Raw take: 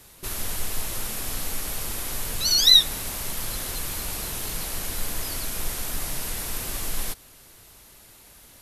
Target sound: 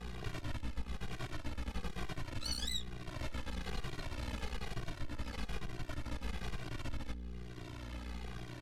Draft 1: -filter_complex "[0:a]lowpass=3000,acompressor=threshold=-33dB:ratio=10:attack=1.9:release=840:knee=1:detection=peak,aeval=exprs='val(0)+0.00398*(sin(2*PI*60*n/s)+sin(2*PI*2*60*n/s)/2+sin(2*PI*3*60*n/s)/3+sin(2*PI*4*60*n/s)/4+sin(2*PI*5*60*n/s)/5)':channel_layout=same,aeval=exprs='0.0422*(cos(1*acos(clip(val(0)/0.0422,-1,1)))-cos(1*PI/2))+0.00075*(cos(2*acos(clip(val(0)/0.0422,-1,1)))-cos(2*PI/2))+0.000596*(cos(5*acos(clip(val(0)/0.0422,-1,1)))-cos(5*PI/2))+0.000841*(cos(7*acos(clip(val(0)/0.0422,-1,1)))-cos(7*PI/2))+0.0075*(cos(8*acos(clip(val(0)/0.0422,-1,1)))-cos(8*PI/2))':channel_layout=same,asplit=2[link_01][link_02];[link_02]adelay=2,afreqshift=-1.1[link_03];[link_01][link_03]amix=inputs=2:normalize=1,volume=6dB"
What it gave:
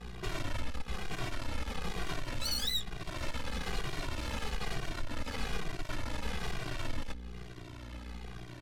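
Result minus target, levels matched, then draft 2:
downward compressor: peak gain reduction −7 dB
-filter_complex "[0:a]lowpass=3000,acompressor=threshold=-40.5dB:ratio=10:attack=1.9:release=840:knee=1:detection=peak,aeval=exprs='val(0)+0.00398*(sin(2*PI*60*n/s)+sin(2*PI*2*60*n/s)/2+sin(2*PI*3*60*n/s)/3+sin(2*PI*4*60*n/s)/4+sin(2*PI*5*60*n/s)/5)':channel_layout=same,aeval=exprs='0.0422*(cos(1*acos(clip(val(0)/0.0422,-1,1)))-cos(1*PI/2))+0.00075*(cos(2*acos(clip(val(0)/0.0422,-1,1)))-cos(2*PI/2))+0.000596*(cos(5*acos(clip(val(0)/0.0422,-1,1)))-cos(5*PI/2))+0.000841*(cos(7*acos(clip(val(0)/0.0422,-1,1)))-cos(7*PI/2))+0.0075*(cos(8*acos(clip(val(0)/0.0422,-1,1)))-cos(8*PI/2))':channel_layout=same,asplit=2[link_01][link_02];[link_02]adelay=2,afreqshift=-1.1[link_03];[link_01][link_03]amix=inputs=2:normalize=1,volume=6dB"

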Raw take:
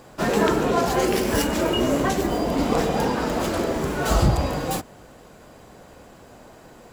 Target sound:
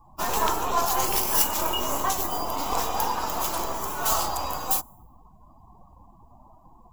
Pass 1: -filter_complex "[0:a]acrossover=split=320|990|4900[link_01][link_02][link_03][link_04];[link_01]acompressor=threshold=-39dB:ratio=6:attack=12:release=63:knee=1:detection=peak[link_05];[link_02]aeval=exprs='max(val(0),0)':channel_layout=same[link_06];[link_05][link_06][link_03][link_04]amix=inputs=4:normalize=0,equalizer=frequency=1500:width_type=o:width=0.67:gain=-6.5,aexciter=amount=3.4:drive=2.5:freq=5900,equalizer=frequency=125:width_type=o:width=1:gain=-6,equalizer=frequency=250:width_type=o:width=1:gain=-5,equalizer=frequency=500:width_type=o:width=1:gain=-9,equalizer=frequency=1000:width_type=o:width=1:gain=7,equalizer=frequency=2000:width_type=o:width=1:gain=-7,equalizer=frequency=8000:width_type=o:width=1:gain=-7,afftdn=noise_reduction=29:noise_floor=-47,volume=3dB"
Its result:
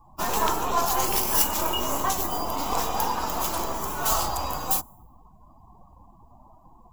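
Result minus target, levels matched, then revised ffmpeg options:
downward compressor: peak gain reduction −5.5 dB
-filter_complex "[0:a]acrossover=split=320|990|4900[link_01][link_02][link_03][link_04];[link_01]acompressor=threshold=-45.5dB:ratio=6:attack=12:release=63:knee=1:detection=peak[link_05];[link_02]aeval=exprs='max(val(0),0)':channel_layout=same[link_06];[link_05][link_06][link_03][link_04]amix=inputs=4:normalize=0,equalizer=frequency=1500:width_type=o:width=0.67:gain=-6.5,aexciter=amount=3.4:drive=2.5:freq=5900,equalizer=frequency=125:width_type=o:width=1:gain=-6,equalizer=frequency=250:width_type=o:width=1:gain=-5,equalizer=frequency=500:width_type=o:width=1:gain=-9,equalizer=frequency=1000:width_type=o:width=1:gain=7,equalizer=frequency=2000:width_type=o:width=1:gain=-7,equalizer=frequency=8000:width_type=o:width=1:gain=-7,afftdn=noise_reduction=29:noise_floor=-47,volume=3dB"

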